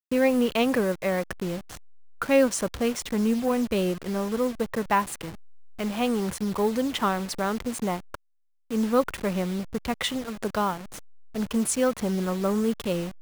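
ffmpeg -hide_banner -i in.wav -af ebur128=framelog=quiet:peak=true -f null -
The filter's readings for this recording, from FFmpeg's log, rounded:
Integrated loudness:
  I:         -26.5 LUFS
  Threshold: -36.9 LUFS
Loudness range:
  LRA:         3.2 LU
  Threshold: -47.4 LUFS
  LRA low:   -28.7 LUFS
  LRA high:  -25.5 LUFS
True peak:
  Peak:       -9.4 dBFS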